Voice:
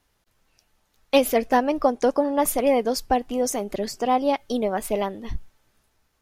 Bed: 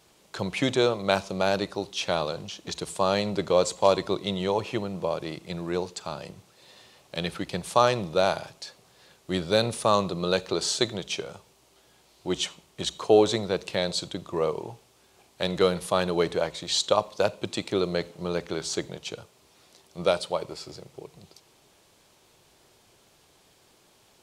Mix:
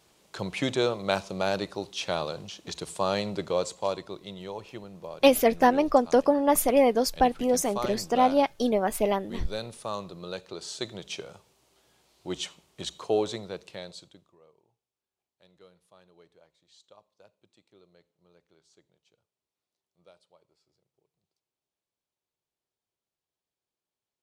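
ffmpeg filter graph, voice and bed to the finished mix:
-filter_complex "[0:a]adelay=4100,volume=0.944[s0];[1:a]volume=1.5,afade=t=out:st=3.19:d=0.93:silence=0.354813,afade=t=in:st=10.66:d=0.46:silence=0.473151,afade=t=out:st=12.87:d=1.5:silence=0.0398107[s1];[s0][s1]amix=inputs=2:normalize=0"

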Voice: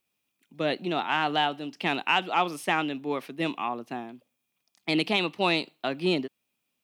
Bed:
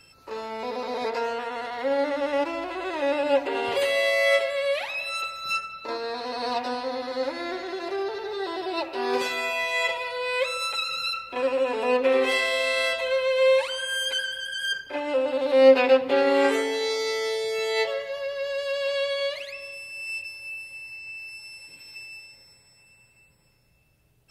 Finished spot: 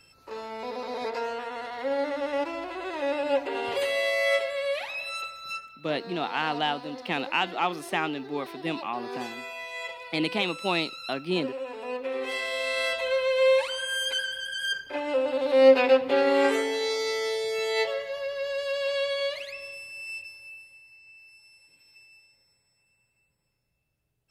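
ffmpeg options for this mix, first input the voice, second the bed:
-filter_complex "[0:a]adelay=5250,volume=0.794[s0];[1:a]volume=2,afade=t=out:st=5.09:d=0.63:silence=0.421697,afade=t=in:st=12.14:d=0.92:silence=0.334965,afade=t=out:st=19.66:d=1.17:silence=0.251189[s1];[s0][s1]amix=inputs=2:normalize=0"

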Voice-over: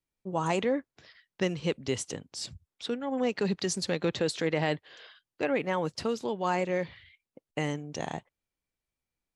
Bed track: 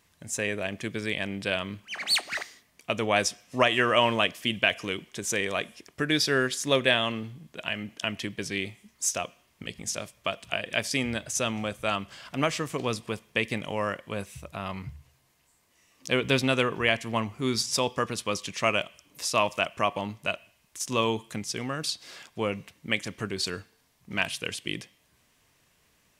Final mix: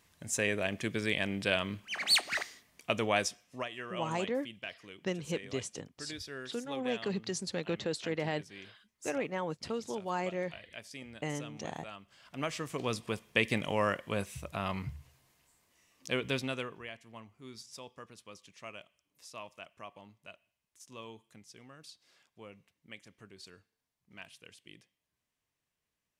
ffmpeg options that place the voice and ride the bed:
-filter_complex "[0:a]adelay=3650,volume=0.501[s0];[1:a]volume=7.08,afade=t=out:st=2.79:d=0.89:silence=0.133352,afade=t=in:st=12.05:d=1.49:silence=0.11885,afade=t=out:st=15.04:d=1.85:silence=0.0891251[s1];[s0][s1]amix=inputs=2:normalize=0"

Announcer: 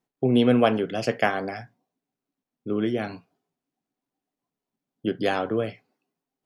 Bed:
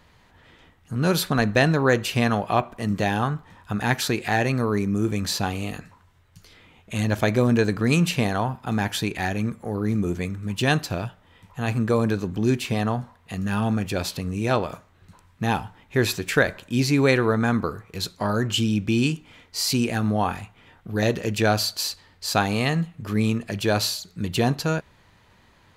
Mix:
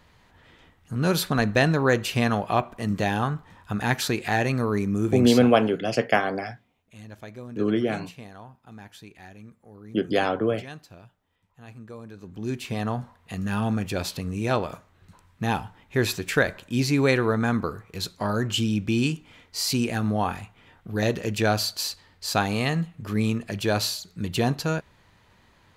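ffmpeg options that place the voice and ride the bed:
-filter_complex "[0:a]adelay=4900,volume=1.19[s0];[1:a]volume=6.68,afade=t=out:st=5.24:d=0.27:silence=0.11885,afade=t=in:st=12.13:d=0.92:silence=0.125893[s1];[s0][s1]amix=inputs=2:normalize=0"

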